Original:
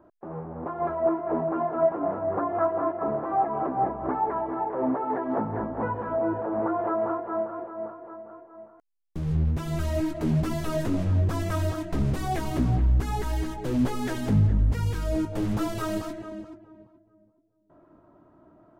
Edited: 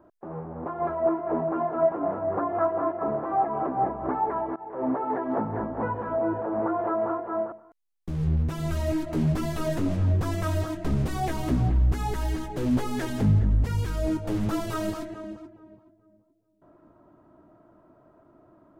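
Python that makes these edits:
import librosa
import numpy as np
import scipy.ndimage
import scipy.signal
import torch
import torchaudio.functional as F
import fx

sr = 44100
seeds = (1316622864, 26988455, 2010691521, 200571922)

y = fx.edit(x, sr, fx.fade_in_from(start_s=4.56, length_s=0.36, floor_db=-23.0),
    fx.cut(start_s=7.52, length_s=1.08), tone=tone)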